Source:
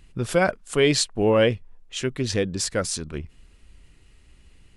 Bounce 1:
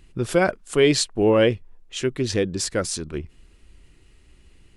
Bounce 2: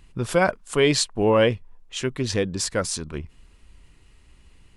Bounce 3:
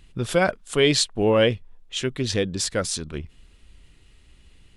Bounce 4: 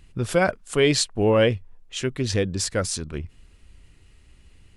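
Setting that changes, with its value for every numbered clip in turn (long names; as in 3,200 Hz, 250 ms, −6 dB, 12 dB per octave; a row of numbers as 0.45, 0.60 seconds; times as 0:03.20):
parametric band, centre frequency: 350, 1,000, 3,500, 93 Hertz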